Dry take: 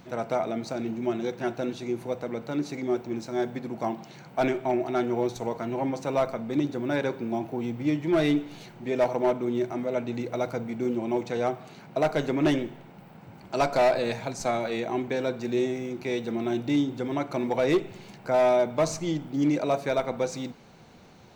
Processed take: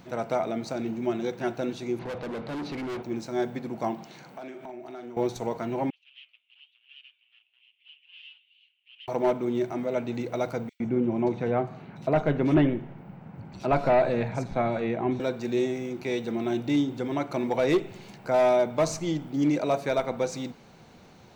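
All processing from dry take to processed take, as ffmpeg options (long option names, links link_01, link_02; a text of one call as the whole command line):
ffmpeg -i in.wav -filter_complex "[0:a]asettb=1/sr,asplit=3[link_01][link_02][link_03];[link_01]atrim=end=1.994[link_04];[link_02]atrim=start=1.99:end=3.03,asetpts=PTS-STARTPTS,afade=type=in:duration=0.004:curve=qsin,afade=type=out:start_time=1.036:duration=0.004:curve=qsin,lowpass=frequency=4200:width=0.5412,lowpass=frequency=4200:width=1.3066,acontrast=21,volume=31.5dB,asoftclip=hard,volume=-31.5dB[link_05];[link_03]atrim=start=3.026[link_06];[link_04][link_05]acrossfade=duration=0.004:curve1=hsin:curve2=qsin[link_07];[link_07][link_06]acrossfade=duration=0.004:curve1=qsin:curve2=hsin,asettb=1/sr,asplit=3[link_08][link_09][link_10];[link_08]atrim=end=4.064[link_11];[link_09]atrim=start=4.06:end=5.17,asetpts=PTS-STARTPTS,afade=type=in:duration=0.004:curve=qsin,afade=type=out:start_time=1.106:duration=0.004:curve=qsin,highpass=170,acompressor=threshold=-38dB:ratio=8:attack=3.2:release=140:knee=1:detection=peak,asplit=2[link_12][link_13];[link_13]adelay=42,volume=-8.5dB[link_14];[link_12][link_14]amix=inputs=2:normalize=0,atrim=end_sample=48951[link_15];[link_10]atrim=start=5.166[link_16];[link_11][link_15]acrossfade=duration=0.004:curve1=hsin:curve2=qsin[link_17];[link_17][link_16]acrossfade=duration=0.004:curve1=qsin:curve2=hsin,asettb=1/sr,asplit=3[link_18][link_19][link_20];[link_18]atrim=end=5.904[link_21];[link_19]atrim=start=5.9:end=9.08,asetpts=PTS-STARTPTS,afade=type=in:duration=0.004:curve=qsin,afade=type=out:start_time=3.176:duration=0.004:curve=qsin,aeval=exprs='0.0447*(abs(mod(val(0)/0.0447+3,4)-2)-1)':channel_layout=same,asuperpass=centerf=2900:order=4:qfactor=5.1,flanger=delay=4.8:depth=2.6:regen=88:speed=1.1:shape=triangular[link_22];[link_20]atrim=start=9.076[link_23];[link_21][link_22]acrossfade=duration=0.004:curve1=hsin:curve2=qsin[link_24];[link_24][link_23]acrossfade=duration=0.004:curve1=qsin:curve2=hsin,asettb=1/sr,asplit=3[link_25][link_26][link_27];[link_25]atrim=end=10.694[link_28];[link_26]atrim=start=10.69:end=15.2,asetpts=PTS-STARTPTS,afade=type=in:duration=0.004:curve=qsin,afade=type=out:start_time=4.506:duration=0.004:curve=qsin,bass=frequency=250:gain=7,treble=frequency=4000:gain=-14,acrossover=split=3900[link_29][link_30];[link_29]adelay=110[link_31];[link_31][link_30]amix=inputs=2:normalize=0,atrim=end_sample=198891[link_32];[link_27]atrim=start=15.196[link_33];[link_28][link_32]acrossfade=duration=0.004:curve1=hsin:curve2=qsin[link_34];[link_34][link_33]acrossfade=duration=0.004:curve1=qsin:curve2=hsin" out.wav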